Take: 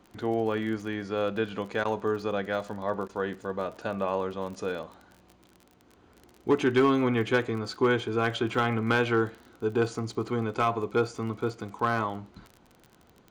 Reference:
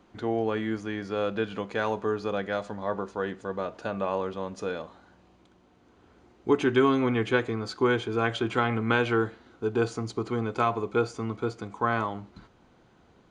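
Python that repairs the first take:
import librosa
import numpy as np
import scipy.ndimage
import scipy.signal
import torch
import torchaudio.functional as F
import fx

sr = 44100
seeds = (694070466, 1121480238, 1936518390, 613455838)

y = fx.fix_declip(x, sr, threshold_db=-15.5)
y = fx.fix_declick_ar(y, sr, threshold=6.5)
y = fx.fix_interpolate(y, sr, at_s=(1.84, 3.08), length_ms=10.0)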